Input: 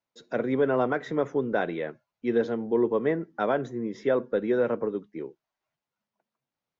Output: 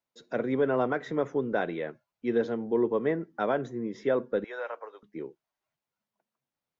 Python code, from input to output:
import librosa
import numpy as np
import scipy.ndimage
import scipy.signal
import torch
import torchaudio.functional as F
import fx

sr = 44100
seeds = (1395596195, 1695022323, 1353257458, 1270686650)

y = fx.highpass(x, sr, hz=670.0, slope=24, at=(4.44, 5.03))
y = F.gain(torch.from_numpy(y), -2.0).numpy()